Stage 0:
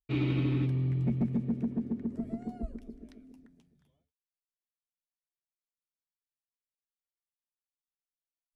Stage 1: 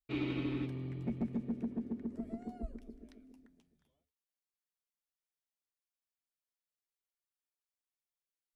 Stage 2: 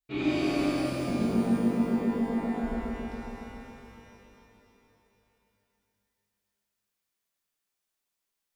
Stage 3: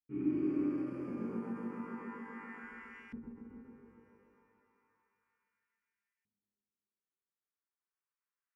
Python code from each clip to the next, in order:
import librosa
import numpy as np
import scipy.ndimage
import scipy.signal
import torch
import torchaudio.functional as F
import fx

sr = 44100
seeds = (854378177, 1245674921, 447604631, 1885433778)

y1 = fx.peak_eq(x, sr, hz=130.0, db=-10.0, octaves=1.0)
y1 = y1 * 10.0 ** (-3.0 / 20.0)
y2 = fx.rev_shimmer(y1, sr, seeds[0], rt60_s=3.1, semitones=12, shimmer_db=-8, drr_db=-9.5)
y3 = fx.fixed_phaser(y2, sr, hz=1600.0, stages=4)
y3 = fx.filter_lfo_bandpass(y3, sr, shape='saw_up', hz=0.32, low_hz=210.0, high_hz=2600.0, q=1.2)
y3 = fx.end_taper(y3, sr, db_per_s=160.0)
y3 = y3 * 10.0 ** (-1.5 / 20.0)